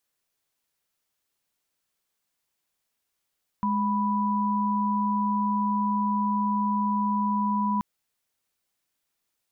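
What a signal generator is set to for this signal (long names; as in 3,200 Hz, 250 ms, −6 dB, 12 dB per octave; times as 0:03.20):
held notes G#3/B5 sine, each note −25 dBFS 4.18 s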